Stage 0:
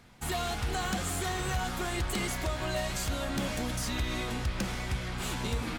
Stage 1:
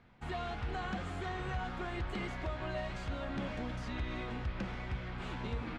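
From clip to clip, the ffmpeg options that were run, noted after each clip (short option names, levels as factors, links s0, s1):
-af "lowpass=2600,volume=0.531"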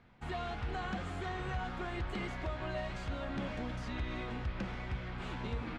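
-af anull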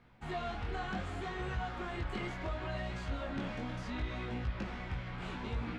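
-af "flanger=delay=16.5:depth=6.9:speed=0.69,volume=1.41"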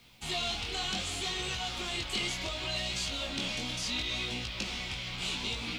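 -filter_complex "[0:a]acrossover=split=210[s0][s1];[s0]alimiter=level_in=5.01:limit=0.0631:level=0:latency=1:release=127,volume=0.2[s2];[s1]aexciter=amount=9:drive=5.6:freq=2500[s3];[s2][s3]amix=inputs=2:normalize=0"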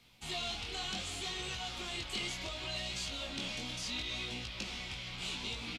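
-af "aresample=32000,aresample=44100,volume=0.562"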